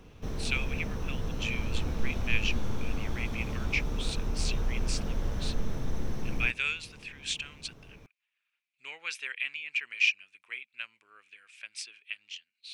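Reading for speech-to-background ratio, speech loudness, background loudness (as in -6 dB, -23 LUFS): 1.5 dB, -34.5 LUFS, -36.0 LUFS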